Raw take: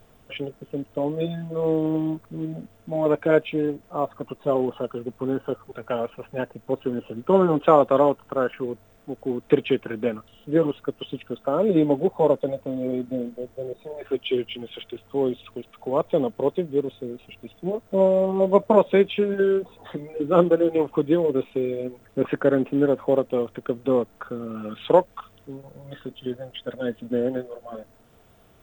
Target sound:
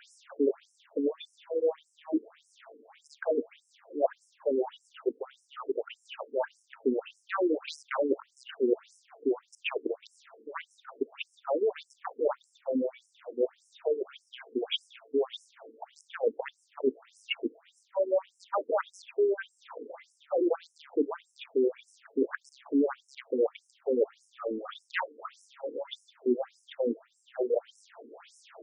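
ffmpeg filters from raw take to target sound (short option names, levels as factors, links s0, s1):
-af "aeval=exprs='0.224*(abs(mod(val(0)/0.224+3,4)-2)-1)':c=same,highpass=f=99:w=0.5412,highpass=f=99:w=1.3066,apsyclip=7.5,areverse,acompressor=threshold=0.126:ratio=10,areverse,afftfilt=real='re*between(b*sr/1024,330*pow(7400/330,0.5+0.5*sin(2*PI*1.7*pts/sr))/1.41,330*pow(7400/330,0.5+0.5*sin(2*PI*1.7*pts/sr))*1.41)':imag='im*between(b*sr/1024,330*pow(7400/330,0.5+0.5*sin(2*PI*1.7*pts/sr))/1.41,330*pow(7400/330,0.5+0.5*sin(2*PI*1.7*pts/sr))*1.41)':win_size=1024:overlap=0.75,volume=0.708"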